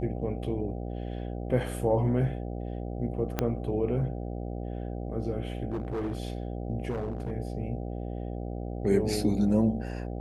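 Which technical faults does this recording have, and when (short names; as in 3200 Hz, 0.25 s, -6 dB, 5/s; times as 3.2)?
buzz 60 Hz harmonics 13 -35 dBFS
3.39 pop -12 dBFS
5.72–6.18 clipped -28 dBFS
6.89–7.32 clipped -28 dBFS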